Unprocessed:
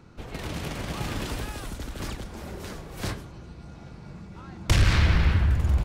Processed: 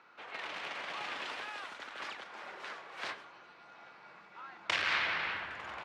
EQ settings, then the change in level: high-pass 1.1 kHz 12 dB/octave; low-pass 2.5 kHz 12 dB/octave; dynamic bell 1.4 kHz, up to -4 dB, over -45 dBFS, Q 1; +3.5 dB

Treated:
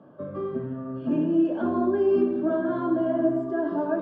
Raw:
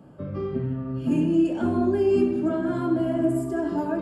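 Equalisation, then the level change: cabinet simulation 330–6100 Hz, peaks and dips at 610 Hz +7 dB, 1.6 kHz +9 dB, 3.5 kHz +10 dB; tilt EQ -4.5 dB/octave; peaking EQ 1.1 kHz +11.5 dB 0.27 oct; -5.5 dB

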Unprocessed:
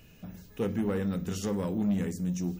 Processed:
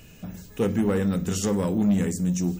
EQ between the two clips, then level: peaking EQ 7.8 kHz +7.5 dB 0.49 oct; +6.5 dB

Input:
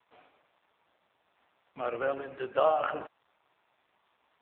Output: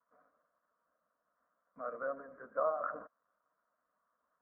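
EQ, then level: four-pole ladder low-pass 1.6 kHz, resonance 40%; distance through air 340 m; static phaser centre 560 Hz, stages 8; +1.0 dB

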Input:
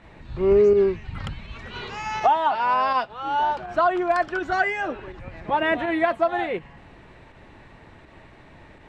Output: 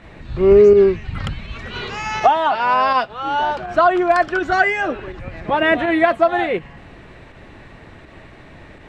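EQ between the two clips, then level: peaking EQ 910 Hz -5.5 dB 0.26 oct; +7.0 dB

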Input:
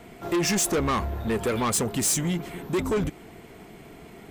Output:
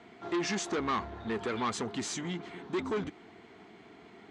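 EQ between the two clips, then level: cabinet simulation 110–5600 Hz, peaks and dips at 150 Hz -8 dB, 550 Hz -9 dB, 2.6 kHz -4 dB, 5.3 kHz -5 dB; bass shelf 260 Hz -5 dB; -4.0 dB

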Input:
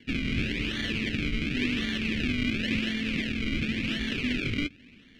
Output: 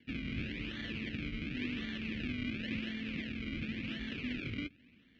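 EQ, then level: high-pass 41 Hz; distance through air 150 m; band-stop 410 Hz, Q 12; -9.0 dB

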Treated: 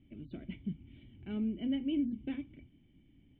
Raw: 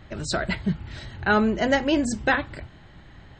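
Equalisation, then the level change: cascade formant filter i; -5.5 dB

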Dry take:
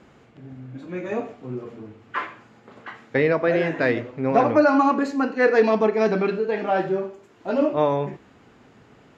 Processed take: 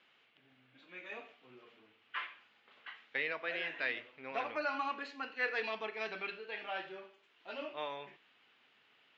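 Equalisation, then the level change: band-pass filter 3.1 kHz, Q 2.3; distance through air 110 m; 0.0 dB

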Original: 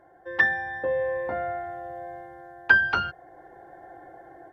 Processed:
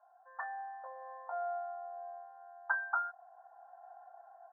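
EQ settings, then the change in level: elliptic band-pass 680–1400 Hz, stop band 50 dB; -6.0 dB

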